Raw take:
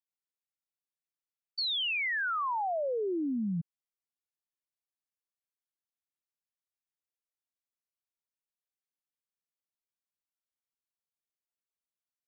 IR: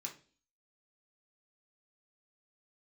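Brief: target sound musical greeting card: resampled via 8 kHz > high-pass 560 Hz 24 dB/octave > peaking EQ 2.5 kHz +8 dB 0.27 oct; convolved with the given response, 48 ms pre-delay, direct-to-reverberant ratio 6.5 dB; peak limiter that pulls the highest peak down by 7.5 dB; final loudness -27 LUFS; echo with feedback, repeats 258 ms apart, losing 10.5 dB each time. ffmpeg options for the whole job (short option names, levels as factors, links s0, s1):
-filter_complex "[0:a]alimiter=level_in=3.98:limit=0.0631:level=0:latency=1,volume=0.251,aecho=1:1:258|516|774:0.299|0.0896|0.0269,asplit=2[s0][s1];[1:a]atrim=start_sample=2205,adelay=48[s2];[s1][s2]afir=irnorm=-1:irlink=0,volume=0.631[s3];[s0][s3]amix=inputs=2:normalize=0,aresample=8000,aresample=44100,highpass=f=560:w=0.5412,highpass=f=560:w=1.3066,equalizer=f=2500:t=o:w=0.27:g=8,volume=2.51"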